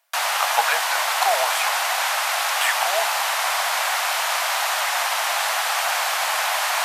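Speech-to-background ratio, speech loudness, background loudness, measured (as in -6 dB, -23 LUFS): -5.0 dB, -26.0 LUFS, -21.0 LUFS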